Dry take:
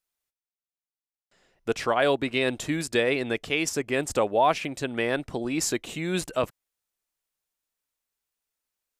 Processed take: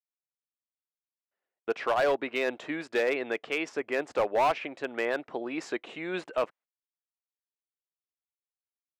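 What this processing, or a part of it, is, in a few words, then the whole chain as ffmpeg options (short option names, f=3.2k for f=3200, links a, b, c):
walkie-talkie: -af "highpass=410,lowpass=2.2k,asoftclip=type=hard:threshold=-20dB,agate=range=-22dB:threshold=-53dB:ratio=16:detection=peak"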